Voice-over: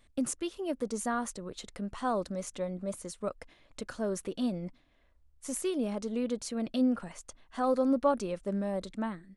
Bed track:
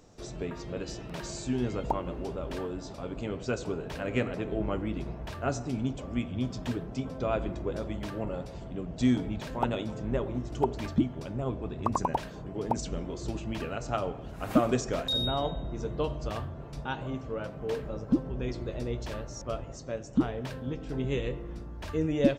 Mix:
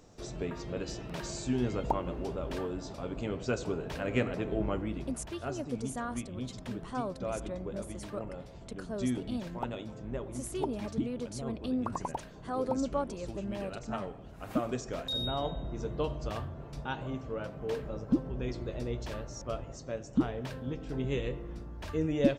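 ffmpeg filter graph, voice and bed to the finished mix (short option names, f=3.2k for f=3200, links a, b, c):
-filter_complex "[0:a]adelay=4900,volume=-5.5dB[a];[1:a]volume=5dB,afade=t=out:st=4.62:d=0.68:silence=0.446684,afade=t=in:st=14.79:d=0.86:silence=0.530884[b];[a][b]amix=inputs=2:normalize=0"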